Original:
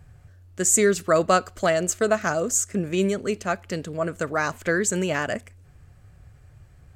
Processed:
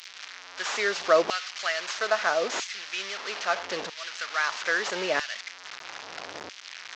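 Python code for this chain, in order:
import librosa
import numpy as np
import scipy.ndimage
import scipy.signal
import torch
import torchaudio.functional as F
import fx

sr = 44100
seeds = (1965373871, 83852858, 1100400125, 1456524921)

y = fx.delta_mod(x, sr, bps=32000, step_db=-25.0)
y = fx.filter_lfo_highpass(y, sr, shape='saw_down', hz=0.77, low_hz=430.0, high_hz=2700.0, q=0.9)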